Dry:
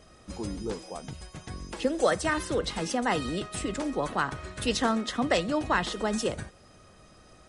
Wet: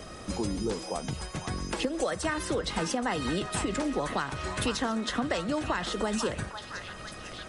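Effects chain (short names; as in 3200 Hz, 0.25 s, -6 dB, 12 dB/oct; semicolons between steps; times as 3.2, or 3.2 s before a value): compressor, threshold -31 dBFS, peak gain reduction 12 dB; on a send: delay with a stepping band-pass 0.5 s, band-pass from 1200 Hz, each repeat 0.7 oct, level -6.5 dB; on the sum: three-band squash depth 40%; gain +4.5 dB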